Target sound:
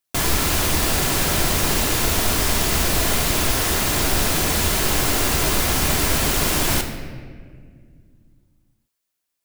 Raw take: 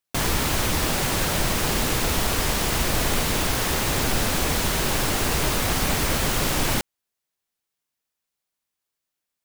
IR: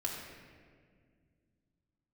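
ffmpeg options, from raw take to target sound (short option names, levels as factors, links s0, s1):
-filter_complex "[0:a]asplit=2[s0][s1];[1:a]atrim=start_sample=2205,highshelf=f=4200:g=8.5[s2];[s1][s2]afir=irnorm=-1:irlink=0,volume=0.708[s3];[s0][s3]amix=inputs=2:normalize=0,volume=0.708"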